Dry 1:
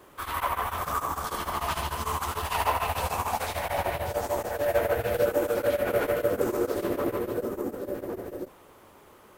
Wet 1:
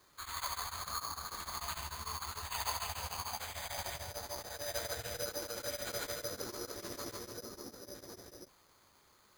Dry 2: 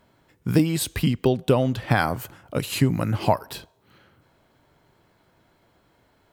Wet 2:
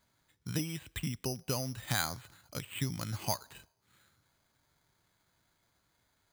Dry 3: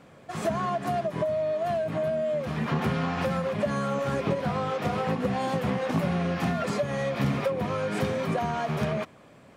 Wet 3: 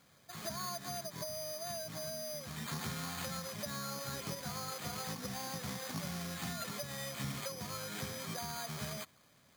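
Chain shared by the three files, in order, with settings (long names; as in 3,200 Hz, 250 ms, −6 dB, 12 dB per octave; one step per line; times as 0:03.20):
bad sample-rate conversion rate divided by 8×, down filtered, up hold
guitar amp tone stack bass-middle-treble 5-5-5
level +1.5 dB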